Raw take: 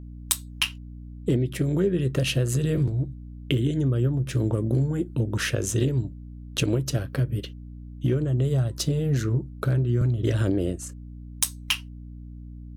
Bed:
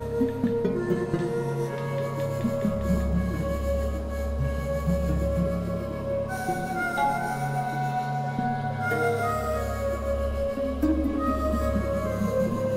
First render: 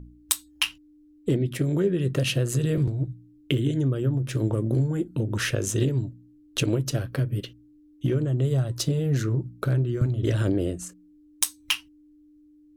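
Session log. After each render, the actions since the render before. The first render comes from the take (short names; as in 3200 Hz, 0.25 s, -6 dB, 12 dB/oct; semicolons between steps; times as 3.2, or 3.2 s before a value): de-hum 60 Hz, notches 4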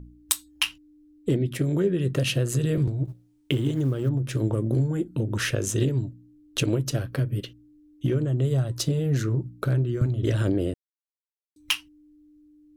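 3.05–4.09 G.711 law mismatch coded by A; 10.74–11.56 mute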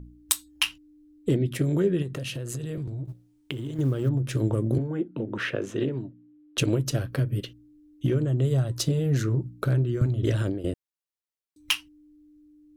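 2.02–3.79 compressor 5:1, threshold -30 dBFS; 4.78–6.58 three-band isolator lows -21 dB, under 160 Hz, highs -22 dB, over 3300 Hz; 10.21–10.64 fade out equal-power, to -14.5 dB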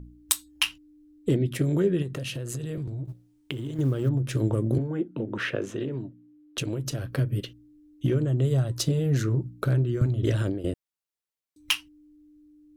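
5.64–7.15 compressor 3:1, threshold -27 dBFS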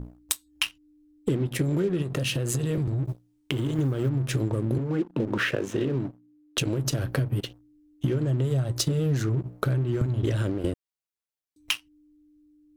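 compressor, threshold -30 dBFS, peak gain reduction 12.5 dB; sample leveller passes 2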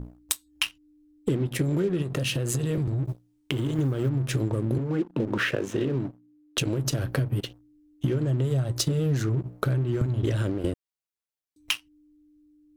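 nothing audible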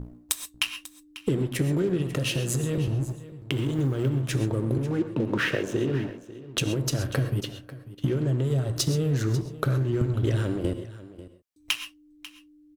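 echo 0.543 s -16.5 dB; non-linear reverb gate 0.15 s rising, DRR 9.5 dB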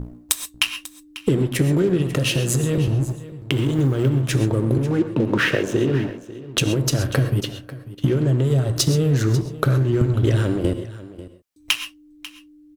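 gain +6.5 dB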